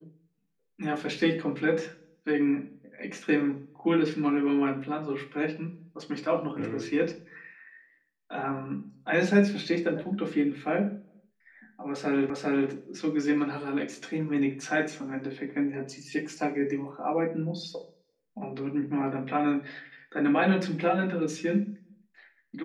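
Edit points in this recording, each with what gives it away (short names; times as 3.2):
12.3 repeat of the last 0.4 s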